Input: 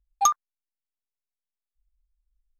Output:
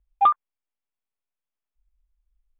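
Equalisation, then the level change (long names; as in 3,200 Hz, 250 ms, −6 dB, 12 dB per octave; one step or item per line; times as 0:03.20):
Chebyshev low-pass with heavy ripple 3,500 Hz, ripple 3 dB
high-frequency loss of the air 260 metres
+6.0 dB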